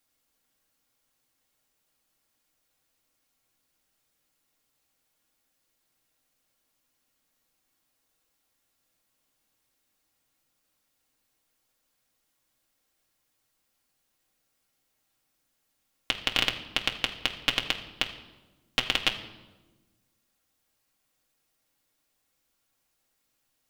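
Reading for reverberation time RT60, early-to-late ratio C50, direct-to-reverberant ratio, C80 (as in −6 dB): 1.2 s, 11.5 dB, 1.0 dB, 13.0 dB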